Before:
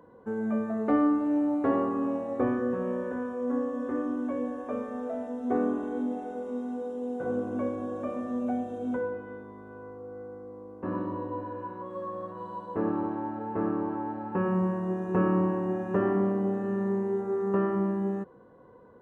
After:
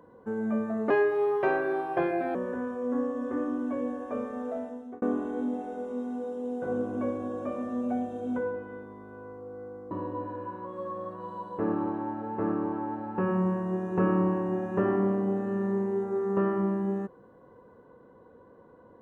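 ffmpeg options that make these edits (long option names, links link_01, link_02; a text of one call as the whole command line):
ffmpeg -i in.wav -filter_complex "[0:a]asplit=5[link_01][link_02][link_03][link_04][link_05];[link_01]atrim=end=0.904[link_06];[link_02]atrim=start=0.9:end=2.93,asetpts=PTS-STARTPTS,asetrate=61740,aresample=44100,atrim=end_sample=63945,asetpts=PTS-STARTPTS[link_07];[link_03]atrim=start=2.926:end=5.6,asetpts=PTS-STARTPTS,afade=type=out:start_time=2.214:duration=0.46[link_08];[link_04]atrim=start=5.6:end=10.492,asetpts=PTS-STARTPTS,afade=type=in:duration=0.004:curve=hsin[link_09];[link_05]atrim=start=11.078[link_10];[link_06][link_07]acrossfade=duration=0.004:curve1=hsin:curve2=hsin[link_11];[link_08][link_09]concat=n=2:v=0:a=1[link_12];[link_11][link_12]acrossfade=duration=0.004:curve1=hsin:curve2=hsin[link_13];[link_13][link_10]acrossfade=duration=0.004:curve1=hsin:curve2=hsin" out.wav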